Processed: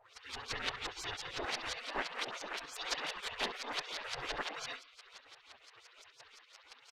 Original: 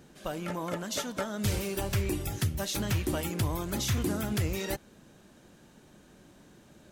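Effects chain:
in parallel at −1 dB: downward compressor 5 to 1, threshold −42 dBFS, peak gain reduction 15.5 dB
on the sum: rotating-speaker cabinet horn 7.5 Hz, later 0.8 Hz, at 0:03.66
comb filter 1.1 ms, depth 70%
log-companded quantiser 4 bits
brickwall limiter −23.5 dBFS, peak gain reduction 10.5 dB
auto-filter low-pass saw up 5.8 Hz 300–4,600 Hz
on a send: bucket-brigade delay 68 ms, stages 2,048, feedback 59%, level −15 dB
on the sum: flanger 1.3 Hz, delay 3 ms, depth 7.2 ms, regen −5%
gate on every frequency bin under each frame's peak −25 dB weak
level +11.5 dB

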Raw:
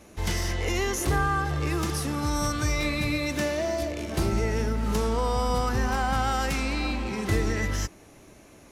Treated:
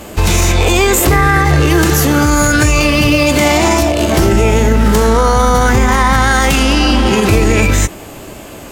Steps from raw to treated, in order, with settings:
formants moved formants +3 semitones
boost into a limiter +21.5 dB
level −1 dB

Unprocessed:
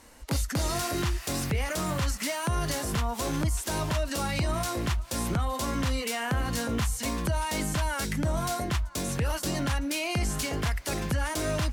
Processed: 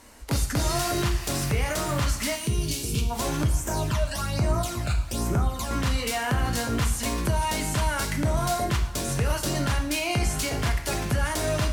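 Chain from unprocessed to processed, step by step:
0:02.35–0:03.10: gain on a spectral selection 490–2,200 Hz −19 dB
0:03.44–0:05.71: all-pass phaser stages 12, 1.2 Hz, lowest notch 320–4,300 Hz
convolution reverb, pre-delay 3 ms, DRR 4.5 dB
level +2 dB

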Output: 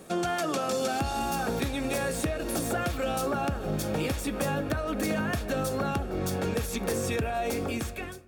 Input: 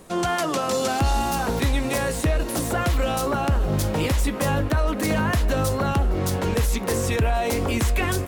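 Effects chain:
fade-out on the ending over 0.97 s
mains-hum notches 50/100 Hz
on a send at −19 dB: convolution reverb RT60 1.0 s, pre-delay 5 ms
on the sum: downward compressor 3 to 1, threshold −26 dBFS, peak gain reduction 7 dB
notch comb filter 1,000 Hz

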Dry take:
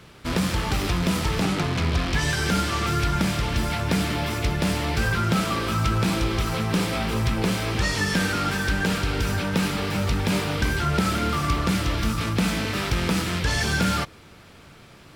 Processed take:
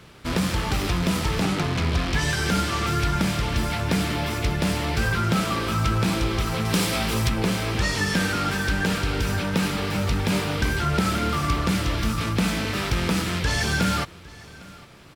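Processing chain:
0:06.65–0:07.29: high-shelf EQ 3,500 Hz +8.5 dB
single-tap delay 806 ms −22 dB

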